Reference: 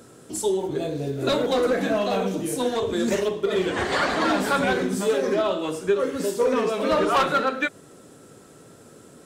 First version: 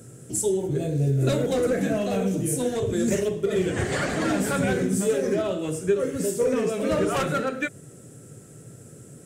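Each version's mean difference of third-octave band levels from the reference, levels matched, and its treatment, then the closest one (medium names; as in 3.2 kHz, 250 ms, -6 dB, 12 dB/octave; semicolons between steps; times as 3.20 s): 4.5 dB: ten-band graphic EQ 125 Hz +12 dB, 250 Hz -3 dB, 1 kHz -12 dB, 4 kHz -10 dB, 8 kHz +6 dB; trim +1 dB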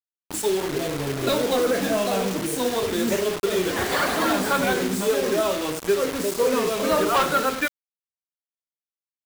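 7.5 dB: bit crusher 5-bit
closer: first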